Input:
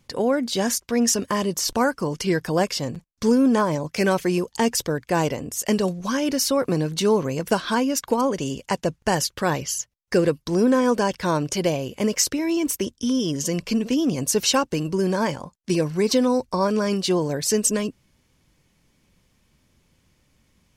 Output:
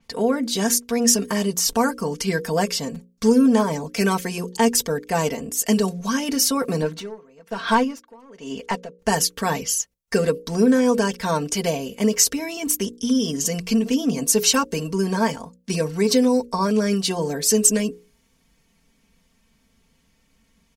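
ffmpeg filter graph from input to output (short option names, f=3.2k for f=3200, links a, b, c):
-filter_complex "[0:a]asettb=1/sr,asplit=3[a][b][c];[a]atrim=end=6.824[d];[b]atrim=start=6.82:end=8.99,asetpts=PTS-STARTPTS,afade=t=in:d=0.004:c=qsin,afade=t=out:st=2.166:d=0.004:c=qsin,asplit=2[e][f];[f]highpass=f=720:p=1,volume=16dB,asoftclip=type=tanh:threshold=-8dB[g];[e][g]amix=inputs=2:normalize=0,lowpass=f=1.5k:p=1,volume=-6dB,aeval=exprs='val(0)*pow(10,-30*(0.5-0.5*cos(2*PI*1.1*n/s))/20)':c=same[h];[c]atrim=start=8.986[i];[d][h]acrossfade=d=0.004:c1=hsin:c2=qsin[j];[j][i]acrossfade=d=0.004:c1=qsin:c2=hsin,bandreject=f=60:t=h:w=6,bandreject=f=120:t=h:w=6,bandreject=f=180:t=h:w=6,bandreject=f=240:t=h:w=6,bandreject=f=300:t=h:w=6,bandreject=f=360:t=h:w=6,bandreject=f=420:t=h:w=6,bandreject=f=480:t=h:w=6,bandreject=f=540:t=h:w=6,aecho=1:1:4.4:0.84,adynamicequalizer=threshold=0.0178:dfrequency=5900:dqfactor=0.7:tfrequency=5900:tqfactor=0.7:attack=5:release=100:ratio=0.375:range=3:mode=boostabove:tftype=highshelf,volume=-1.5dB"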